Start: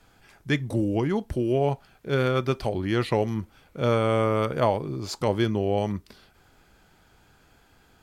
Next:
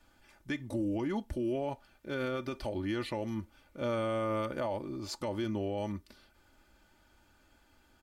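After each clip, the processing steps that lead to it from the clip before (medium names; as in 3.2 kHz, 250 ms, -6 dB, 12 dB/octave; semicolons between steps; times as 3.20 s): comb 3.4 ms, depth 61%; peak limiter -17.5 dBFS, peak gain reduction 8.5 dB; trim -8 dB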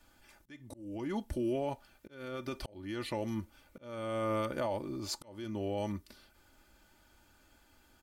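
treble shelf 6.5 kHz +7 dB; slow attack 495 ms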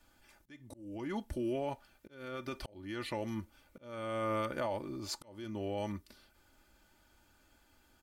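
dynamic bell 1.7 kHz, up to +4 dB, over -49 dBFS, Q 0.77; trim -2.5 dB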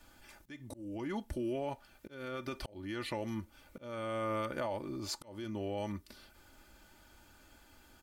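compression 1.5:1, threshold -53 dBFS, peak gain reduction 8 dB; trim +6.5 dB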